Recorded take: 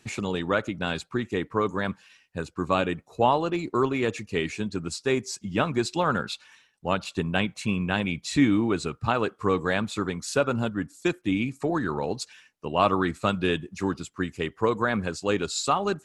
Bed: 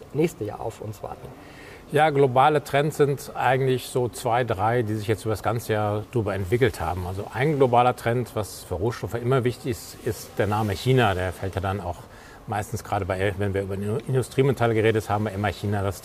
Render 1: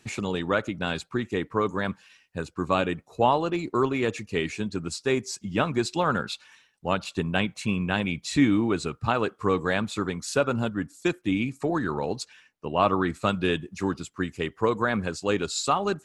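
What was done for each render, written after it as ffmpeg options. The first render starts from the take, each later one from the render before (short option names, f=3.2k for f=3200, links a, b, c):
-filter_complex "[0:a]asettb=1/sr,asplit=3[a][b][c];[a]atrim=end=12.224[d];[b]atrim=start=12.22:end=13.1,asetpts=PTS-STARTPTS,afade=t=in:d=0.004:c=qsin,afade=t=out:st=0.876:d=0.004:c=qsin,highshelf=f=4k:g=-7[e];[c]atrim=start=13.096[f];[d][e]acrossfade=d=0.004:c1=hsin:c2=qsin[g];[g][f]acrossfade=d=0.004:c1=qsin:c2=hsin"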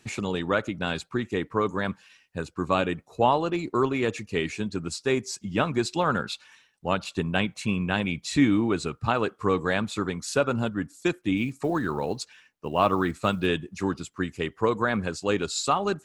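-filter_complex "[0:a]asettb=1/sr,asplit=3[a][b][c];[a]atrim=end=11.374[d];[b]atrim=start=11.37:end=13.46,asetpts=PTS-STARTPTS,afade=t=in:d=0.004:c=qsin,afade=t=out:st=2.086:d=0.004:c=qsin,acrusher=bits=9:mode=log:mix=0:aa=0.000001[e];[c]atrim=start=13.456[f];[d][e]acrossfade=d=0.004:c1=hsin:c2=qsin[g];[g][f]acrossfade=d=0.004:c1=qsin:c2=hsin"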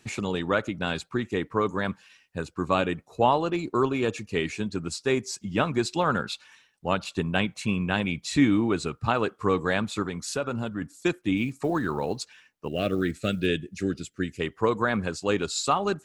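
-filter_complex "[0:a]asettb=1/sr,asplit=3[a][b][c];[a]atrim=end=3.604[d];[b]atrim=start=3.6:end=4.24,asetpts=PTS-STARTPTS,afade=t=in:d=0.004:c=qsin,afade=t=out:st=0.636:d=0.004:c=qsin,bandreject=f=2k:w=5.5[e];[c]atrim=start=4.236[f];[d][e]acrossfade=d=0.004:c1=hsin:c2=qsin[g];[g][f]acrossfade=d=0.004:c1=qsin:c2=hsin,asettb=1/sr,asplit=3[h][i][j];[h]atrim=end=10.024[k];[i]atrim=start=10.02:end=10.82,asetpts=PTS-STARTPTS,afade=t=in:d=0.004:c=qsin,afade=t=out:st=0.796:d=0.004:c=qsin,acompressor=threshold=-28dB:ratio=2:attack=3.2:release=140:knee=1:detection=peak[l];[j]atrim=start=10.816[m];[k][l]acrossfade=d=0.004:c1=hsin:c2=qsin[n];[n][m]acrossfade=d=0.004:c1=qsin:c2=hsin,asettb=1/sr,asplit=3[o][p][q];[o]atrim=end=12.684[r];[p]atrim=start=12.68:end=14.4,asetpts=PTS-STARTPTS,afade=t=in:d=0.004:c=qsin,afade=t=out:st=1.716:d=0.004:c=qsin,asuperstop=centerf=960:order=4:qfactor=1[s];[q]atrim=start=14.396[t];[r][s]acrossfade=d=0.004:c1=hsin:c2=qsin[u];[u][t]acrossfade=d=0.004:c1=qsin:c2=hsin"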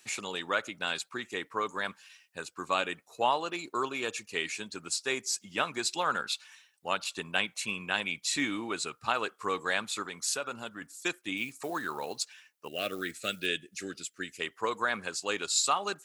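-af "highpass=f=1.3k:p=1,highshelf=f=7.2k:g=8"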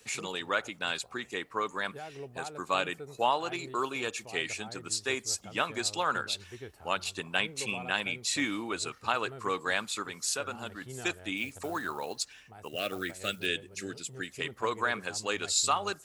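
-filter_complex "[1:a]volume=-24.5dB[a];[0:a][a]amix=inputs=2:normalize=0"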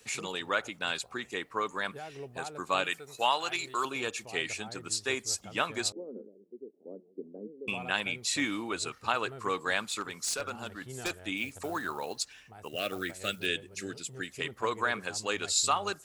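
-filter_complex "[0:a]asettb=1/sr,asplit=3[a][b][c];[a]atrim=end=2.844[d];[b]atrim=start=2.84:end=3.85,asetpts=PTS-STARTPTS,afade=t=in:d=0.004:c=qsin,afade=t=out:st=1.006:d=0.004:c=qsin,tiltshelf=f=970:g=-7[e];[c]atrim=start=3.846[f];[d][e]acrossfade=d=0.004:c1=hsin:c2=qsin[g];[g][f]acrossfade=d=0.004:c1=qsin:c2=hsin,asettb=1/sr,asplit=3[h][i][j];[h]atrim=end=5.924[k];[i]atrim=start=5.92:end=7.68,asetpts=PTS-STARTPTS,afade=t=in:d=0.004:c=qsin,afade=t=out:st=1.756:d=0.004:c=qsin,asuperpass=centerf=320:order=8:qfactor=1.1[l];[j]atrim=start=7.676[m];[k][l]acrossfade=d=0.004:c1=hsin:c2=qsin[n];[n][m]acrossfade=d=0.004:c1=qsin:c2=hsin,asettb=1/sr,asplit=3[o][p][q];[o]atrim=end=9.804[r];[p]atrim=start=9.8:end=11.21,asetpts=PTS-STARTPTS,afade=t=in:d=0.004:c=qsin,afade=t=out:st=1.406:d=0.004:c=qsin,aeval=exprs='0.0531*(abs(mod(val(0)/0.0531+3,4)-2)-1)':c=same[s];[q]atrim=start=11.206[t];[r][s]acrossfade=d=0.004:c1=hsin:c2=qsin[u];[u][t]acrossfade=d=0.004:c1=qsin:c2=hsin"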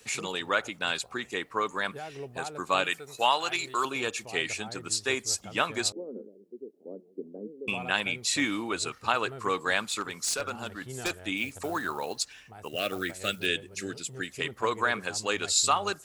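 -af "volume=3dB"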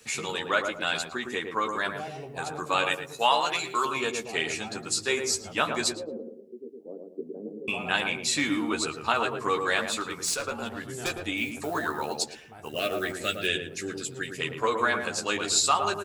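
-filter_complex "[0:a]asplit=2[a][b];[b]adelay=13,volume=-5.5dB[c];[a][c]amix=inputs=2:normalize=0,asplit=2[d][e];[e]adelay=111,lowpass=f=880:p=1,volume=-3dB,asplit=2[f][g];[g]adelay=111,lowpass=f=880:p=1,volume=0.36,asplit=2[h][i];[i]adelay=111,lowpass=f=880:p=1,volume=0.36,asplit=2[j][k];[k]adelay=111,lowpass=f=880:p=1,volume=0.36,asplit=2[l][m];[m]adelay=111,lowpass=f=880:p=1,volume=0.36[n];[d][f][h][j][l][n]amix=inputs=6:normalize=0"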